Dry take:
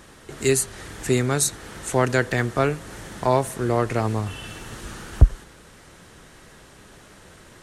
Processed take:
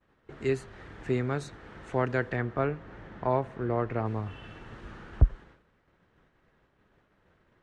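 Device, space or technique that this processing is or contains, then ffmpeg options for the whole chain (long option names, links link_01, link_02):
hearing-loss simulation: -filter_complex "[0:a]lowpass=2300,agate=range=-33dB:threshold=-40dB:ratio=3:detection=peak,asettb=1/sr,asplit=3[link_01][link_02][link_03];[link_01]atrim=end=2.364[link_04];[link_02]atrim=start=2.36:end=4.06,asetpts=PTS-STARTPTS,afade=type=in:duration=0.004:curve=qsin,afade=type=out:start_time=1.696:duration=0.004:curve=qsin,aemphasis=mode=reproduction:type=50fm[link_05];[link_03]atrim=start=4.056[link_06];[link_04][link_05]acrossfade=duration=0.004:curve1=hsin:curve2=qsin[link_07];[link_07][link_06]acrossfade=duration=0.004:curve1=qsin:curve2=hsin,volume=-7.5dB"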